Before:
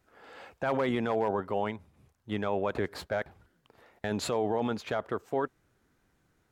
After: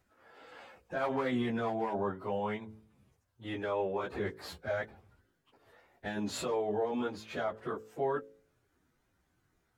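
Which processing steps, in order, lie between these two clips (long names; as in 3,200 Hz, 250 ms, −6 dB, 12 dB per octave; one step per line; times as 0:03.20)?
time stretch by phase vocoder 1.5×
hum removal 54.47 Hz, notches 10
level −1 dB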